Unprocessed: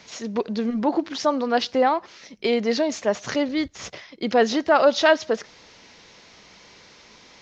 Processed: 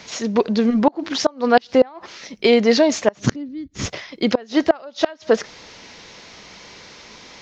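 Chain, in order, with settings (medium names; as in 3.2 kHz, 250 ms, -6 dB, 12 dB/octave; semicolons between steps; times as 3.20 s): 3.17–3.86 s: resonant low shelf 420 Hz +13.5 dB, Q 1.5; inverted gate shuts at -10 dBFS, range -28 dB; trim +7.5 dB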